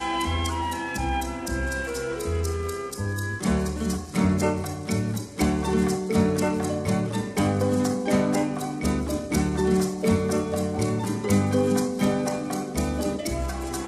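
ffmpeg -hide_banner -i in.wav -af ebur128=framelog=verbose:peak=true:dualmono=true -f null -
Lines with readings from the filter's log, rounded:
Integrated loudness:
  I:         -22.5 LUFS
  Threshold: -32.5 LUFS
Loudness range:
  LRA:         3.9 LU
  Threshold: -42.3 LUFS
  LRA low:   -25.0 LUFS
  LRA high:  -21.1 LUFS
True peak:
  Peak:       -9.9 dBFS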